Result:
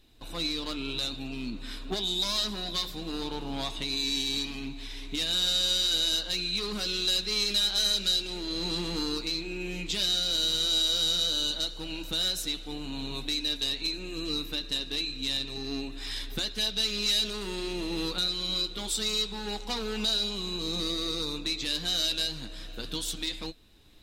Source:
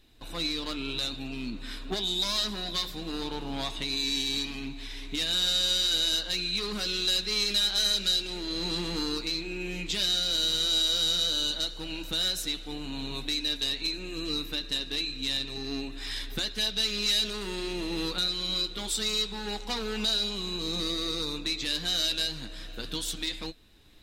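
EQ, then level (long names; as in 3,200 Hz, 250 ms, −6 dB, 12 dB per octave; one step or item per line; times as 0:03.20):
parametric band 1,800 Hz −3 dB 0.77 octaves
0.0 dB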